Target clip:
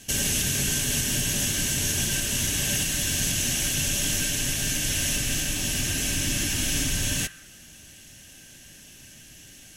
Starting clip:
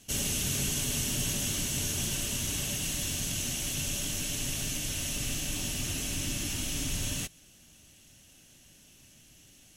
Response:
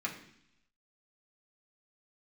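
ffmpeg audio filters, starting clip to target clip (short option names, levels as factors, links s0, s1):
-filter_complex "[0:a]alimiter=limit=0.0668:level=0:latency=1:release=445,asplit=2[s0][s1];[s1]highpass=f=1600:t=q:w=5.5[s2];[1:a]atrim=start_sample=2205,asetrate=28224,aresample=44100[s3];[s2][s3]afir=irnorm=-1:irlink=0,volume=0.168[s4];[s0][s4]amix=inputs=2:normalize=0,volume=2.51"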